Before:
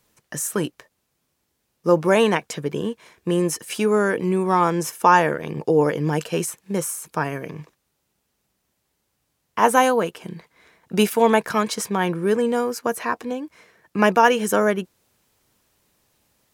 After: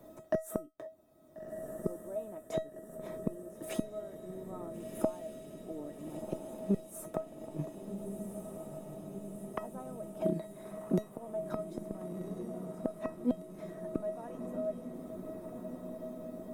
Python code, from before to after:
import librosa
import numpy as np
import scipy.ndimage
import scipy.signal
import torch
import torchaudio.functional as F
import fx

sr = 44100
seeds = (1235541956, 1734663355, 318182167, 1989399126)

p1 = fx.small_body(x, sr, hz=(310.0, 610.0, 3600.0), ring_ms=25, db=17)
p2 = fx.gate_flip(p1, sr, shuts_db=-10.0, range_db=-35)
p3 = fx.comb_fb(p2, sr, f0_hz=640.0, decay_s=0.24, harmonics='all', damping=0.0, mix_pct=90)
p4 = 10.0 ** (-32.0 / 20.0) * (np.abs((p3 / 10.0 ** (-32.0 / 20.0) + 3.0) % 4.0 - 2.0) - 1.0)
p5 = p3 + (p4 * librosa.db_to_amplitude(-9.5))
p6 = fx.peak_eq(p5, sr, hz=3800.0, db=-13.5, octaves=2.8)
p7 = p6 + fx.echo_diffused(p6, sr, ms=1403, feedback_pct=69, wet_db=-11.0, dry=0)
p8 = fx.band_squash(p7, sr, depth_pct=40)
y = p8 * librosa.db_to_amplitude(11.0)